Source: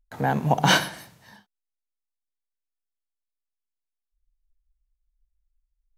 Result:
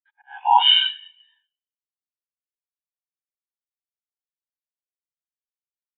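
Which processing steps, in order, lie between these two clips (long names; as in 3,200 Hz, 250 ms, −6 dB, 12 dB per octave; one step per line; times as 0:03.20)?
every bin's largest magnitude spread in time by 120 ms
Butterworth high-pass 850 Hz 48 dB per octave
high shelf with overshoot 1,900 Hz +9.5 dB, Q 1.5
coupled-rooms reverb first 0.46 s, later 1.7 s, from −18 dB, DRR 7 dB
in parallel at +2 dB: downward compressor, threshold −21 dBFS, peak gain reduction 17 dB
on the sum: brickwall limiter −4 dBFS, peak gain reduction 11.5 dB
volume swells 224 ms
downsampling to 8,000 Hz
every bin expanded away from the loudest bin 2.5 to 1
level +1.5 dB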